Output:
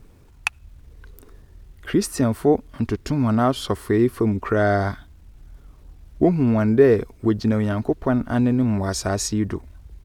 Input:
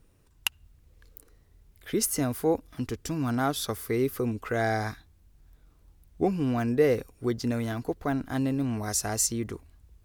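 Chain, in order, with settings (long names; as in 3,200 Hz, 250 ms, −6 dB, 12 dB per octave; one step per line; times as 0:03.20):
low-pass filter 2,000 Hz 6 dB per octave
in parallel at −1 dB: downward compressor 6 to 1, threshold −41 dBFS, peak gain reduction 21.5 dB
on the sum: bit reduction 12 bits
pitch shifter −1.5 semitones
level +7.5 dB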